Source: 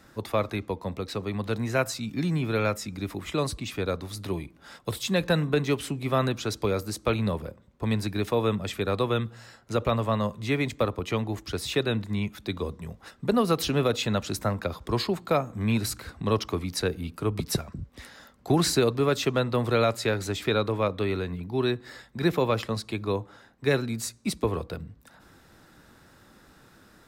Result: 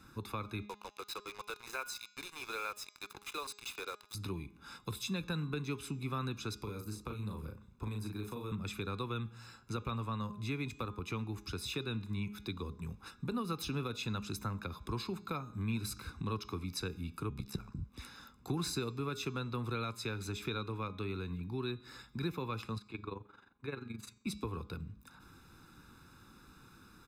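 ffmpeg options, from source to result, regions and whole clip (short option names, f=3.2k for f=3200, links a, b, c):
-filter_complex "[0:a]asettb=1/sr,asplit=3[a][b][c];[a]atrim=end=0.664[d];[b]atrim=start=0.66:end=4.15,asetpts=PTS-STARTPTS,afade=t=in:d=0.004:c=qsin,afade=t=out:st=3.486:d=0.004:c=qsin,highpass=f=460:w=0.5412,highpass=f=460:w=1.3066,acrusher=bits=5:mix=0:aa=0.5[e];[c]atrim=start=4.146[f];[d][e]acrossfade=d=0.004:c1=hsin:c2=qsin[g];[g][f]acrossfade=d=0.004:c1=qsin:c2=hsin,asettb=1/sr,asplit=3[h][i][j];[h]atrim=end=6.634[k];[i]atrim=start=6.63:end=8.52,asetpts=PTS-STARTPTS,afade=t=in:d=0.004:c=qsin,afade=t=out:st=1.886:d=0.004:c=qsin,acrossover=split=440|1200|7200[l][m][n][o];[l]acompressor=threshold=-35dB:ratio=3[p];[m]acompressor=threshold=-42dB:ratio=3[q];[n]acompressor=threshold=-52dB:ratio=3[r];[o]acompressor=threshold=-48dB:ratio=3[s];[p][q][r][s]amix=inputs=4:normalize=0,asplit=2[t][u];[u]adelay=38,volume=-4dB[v];[t][v]amix=inputs=2:normalize=0,atrim=end_sample=83349[w];[j]atrim=start=8.516[x];[k][w]acrossfade=d=0.004:c1=hsin:c2=qsin[y];[y][x]acrossfade=d=0.004:c1=qsin:c2=hsin,asettb=1/sr,asplit=3[z][aa][ab];[z]atrim=end=17.294[ac];[aa]atrim=start=17.29:end=17.75,asetpts=PTS-STARTPTS,afade=t=in:d=0.004:c=qsin,afade=t=out:st=0.456:d=0.004:c=qsin,acrossover=split=2800[ad][ae];[ae]acompressor=threshold=-38dB:ratio=4:attack=1:release=60[af];[ad][af]amix=inputs=2:normalize=0,aeval=exprs='val(0)*sin(2*PI*33*n/s)':c=same[ag];[ab]atrim=start=17.746[ah];[ac][ag]acrossfade=d=0.004:c1=hsin:c2=qsin[ai];[ai][ah]acrossfade=d=0.004:c1=qsin:c2=hsin,asettb=1/sr,asplit=3[aj][ak][al];[aj]atrim=end=22.784[am];[ak]atrim=start=22.78:end=24.27,asetpts=PTS-STARTPTS,afade=t=in:d=0.004:c=qsin,afade=t=out:st=1.486:d=0.004:c=qsin,bass=f=250:g=-6,treble=f=4k:g=-12,bandreject=f=5.3k:w=7.9,tremolo=f=23:d=0.788[an];[al]atrim=start=24.266[ao];[am][an]acrossfade=d=0.004:c1=hsin:c2=qsin[ap];[ap][ao]acrossfade=d=0.004:c1=qsin:c2=hsin,bandreject=f=206.8:t=h:w=4,bandreject=f=413.6:t=h:w=4,bandreject=f=620.4:t=h:w=4,bandreject=f=827.2:t=h:w=4,bandreject=f=1.034k:t=h:w=4,bandreject=f=1.2408k:t=h:w=4,bandreject=f=1.4476k:t=h:w=4,bandreject=f=1.6544k:t=h:w=4,bandreject=f=1.8612k:t=h:w=4,bandreject=f=2.068k:t=h:w=4,bandreject=f=2.2748k:t=h:w=4,bandreject=f=2.4816k:t=h:w=4,bandreject=f=2.6884k:t=h:w=4,bandreject=f=2.8952k:t=h:w=4,bandreject=f=3.102k:t=h:w=4,bandreject=f=3.3088k:t=h:w=4,bandreject=f=3.5156k:t=h:w=4,bandreject=f=3.7224k:t=h:w=4,bandreject=f=3.9292k:t=h:w=4,bandreject=f=4.136k:t=h:w=4,bandreject=f=4.3428k:t=h:w=4,bandreject=f=4.5496k:t=h:w=4,bandreject=f=4.7564k:t=h:w=4,bandreject=f=4.9632k:t=h:w=4,bandreject=f=5.17k:t=h:w=4,bandreject=f=5.3768k:t=h:w=4,bandreject=f=5.5836k:t=h:w=4,bandreject=f=5.7904k:t=h:w=4,bandreject=f=5.9972k:t=h:w=4,bandreject=f=6.204k:t=h:w=4,bandreject=f=6.4108k:t=h:w=4,bandreject=f=6.6176k:t=h:w=4,bandreject=f=6.8244k:t=h:w=4,bandreject=f=7.0312k:t=h:w=4,bandreject=f=7.238k:t=h:w=4,bandreject=f=7.4448k:t=h:w=4,bandreject=f=7.6516k:t=h:w=4,acompressor=threshold=-37dB:ratio=2,aecho=1:1:0.8:0.75,volume=-6dB"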